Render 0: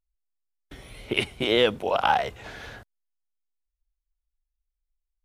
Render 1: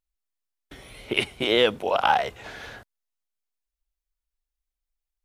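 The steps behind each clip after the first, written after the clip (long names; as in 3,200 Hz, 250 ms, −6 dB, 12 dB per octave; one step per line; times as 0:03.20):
low-shelf EQ 190 Hz −6 dB
level +1.5 dB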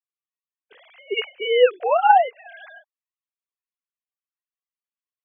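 three sine waves on the formant tracks
level +5 dB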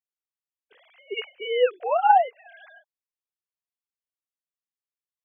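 dynamic equaliser 780 Hz, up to +4 dB, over −23 dBFS, Q 1.8
level −6.5 dB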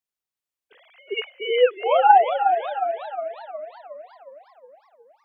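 feedback echo with a swinging delay time 364 ms, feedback 56%, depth 124 cents, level −7 dB
level +3.5 dB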